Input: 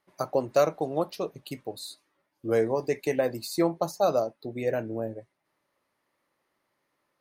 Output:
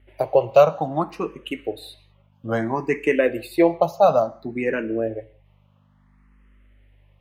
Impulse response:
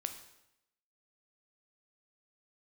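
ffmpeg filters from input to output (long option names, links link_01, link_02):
-filter_complex "[0:a]highshelf=frequency=3700:width_type=q:width=3:gain=-7.5,aeval=exprs='val(0)+0.001*(sin(2*PI*50*n/s)+sin(2*PI*2*50*n/s)/2+sin(2*PI*3*50*n/s)/3+sin(2*PI*4*50*n/s)/4+sin(2*PI*5*50*n/s)/5)':channel_layout=same,asplit=2[link_01][link_02];[link_02]bass=frequency=250:gain=-6,treble=frequency=4000:gain=4[link_03];[1:a]atrim=start_sample=2205,afade=type=out:start_time=0.25:duration=0.01,atrim=end_sample=11466,lowpass=6400[link_04];[link_03][link_04]afir=irnorm=-1:irlink=0,volume=-5.5dB[link_05];[link_01][link_05]amix=inputs=2:normalize=0,asplit=2[link_06][link_07];[link_07]afreqshift=0.59[link_08];[link_06][link_08]amix=inputs=2:normalize=1,volume=6.5dB"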